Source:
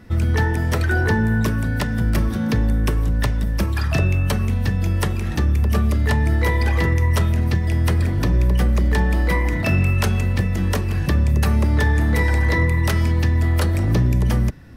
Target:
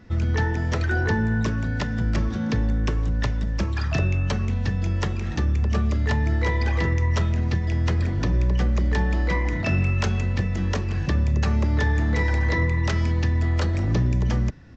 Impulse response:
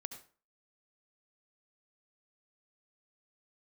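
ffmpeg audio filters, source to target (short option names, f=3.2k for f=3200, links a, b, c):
-af "aresample=16000,aresample=44100,volume=-4dB"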